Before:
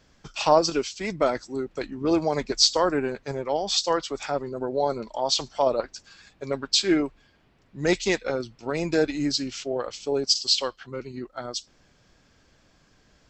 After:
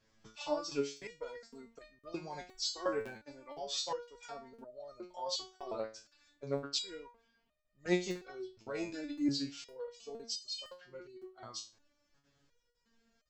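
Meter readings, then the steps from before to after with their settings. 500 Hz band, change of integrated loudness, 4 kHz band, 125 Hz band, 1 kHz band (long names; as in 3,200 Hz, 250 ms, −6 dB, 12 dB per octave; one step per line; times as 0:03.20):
−15.0 dB, −14.5 dB, −15.0 dB, −13.5 dB, −17.0 dB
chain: regular buffer underruns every 0.51 s, samples 2,048, zero, from 0:00.97
step-sequenced resonator 2.8 Hz 110–610 Hz
level −1.5 dB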